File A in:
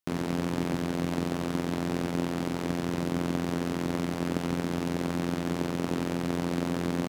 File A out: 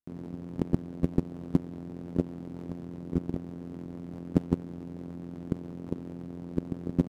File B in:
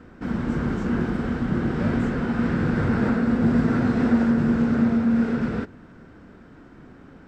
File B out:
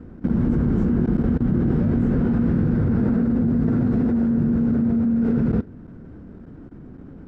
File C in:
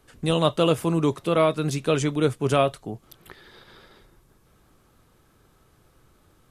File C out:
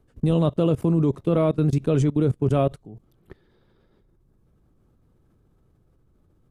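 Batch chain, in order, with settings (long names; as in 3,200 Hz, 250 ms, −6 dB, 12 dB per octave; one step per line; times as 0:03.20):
tilt shelving filter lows +9.5 dB, about 650 Hz
output level in coarse steps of 21 dB
level +2 dB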